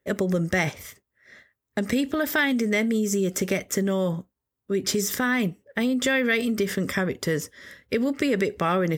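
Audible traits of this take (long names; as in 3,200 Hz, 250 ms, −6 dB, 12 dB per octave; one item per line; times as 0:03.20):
background noise floor −84 dBFS
spectral slope −4.5 dB per octave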